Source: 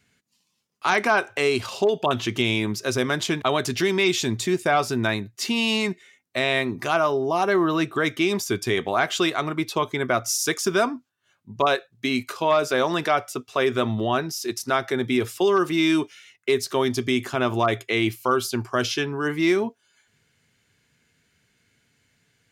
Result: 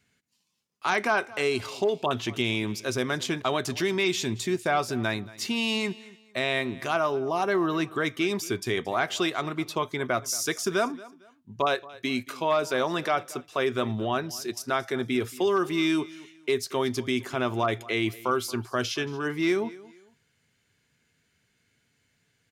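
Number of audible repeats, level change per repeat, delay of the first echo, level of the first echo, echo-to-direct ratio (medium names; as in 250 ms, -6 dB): 2, -11.0 dB, 227 ms, -20.0 dB, -19.5 dB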